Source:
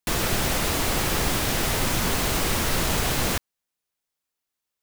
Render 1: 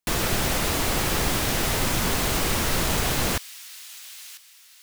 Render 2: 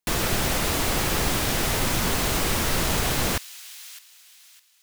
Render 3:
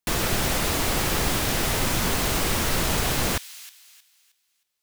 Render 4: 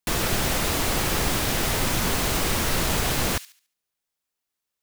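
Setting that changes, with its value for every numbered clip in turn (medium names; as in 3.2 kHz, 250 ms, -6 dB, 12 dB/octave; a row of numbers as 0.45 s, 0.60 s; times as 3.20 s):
feedback echo behind a high-pass, time: 994 ms, 608 ms, 313 ms, 71 ms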